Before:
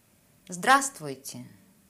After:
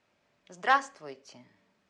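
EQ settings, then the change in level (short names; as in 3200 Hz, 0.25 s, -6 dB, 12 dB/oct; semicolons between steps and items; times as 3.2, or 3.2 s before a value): air absorption 130 m; three-band isolator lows -14 dB, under 360 Hz, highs -16 dB, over 7600 Hz; -3.0 dB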